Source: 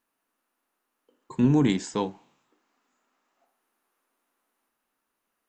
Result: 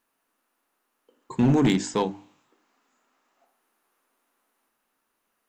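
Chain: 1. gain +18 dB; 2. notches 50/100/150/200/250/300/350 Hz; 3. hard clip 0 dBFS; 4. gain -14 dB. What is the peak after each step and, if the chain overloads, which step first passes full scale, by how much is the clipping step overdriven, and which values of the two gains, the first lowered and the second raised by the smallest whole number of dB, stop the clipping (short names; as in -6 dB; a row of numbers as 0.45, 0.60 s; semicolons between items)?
+7.5, +6.5, 0.0, -14.0 dBFS; step 1, 6.5 dB; step 1 +11 dB, step 4 -7 dB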